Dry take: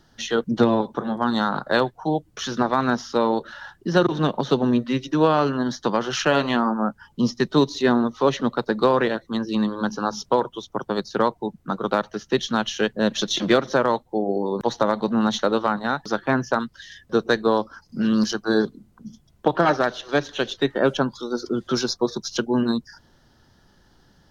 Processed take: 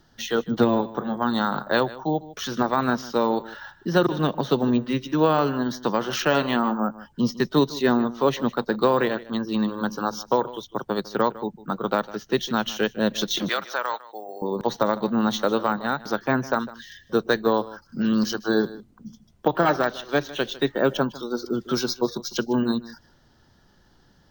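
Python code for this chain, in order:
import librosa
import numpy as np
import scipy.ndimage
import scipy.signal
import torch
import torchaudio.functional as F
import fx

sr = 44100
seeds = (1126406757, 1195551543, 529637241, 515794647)

y = np.repeat(scipy.signal.resample_poly(x, 1, 2), 2)[:len(x)]
y = fx.highpass(y, sr, hz=960.0, slope=12, at=(13.49, 14.42))
y = y + 10.0 ** (-18.0 / 20.0) * np.pad(y, (int(153 * sr / 1000.0), 0))[:len(y)]
y = F.gain(torch.from_numpy(y), -1.5).numpy()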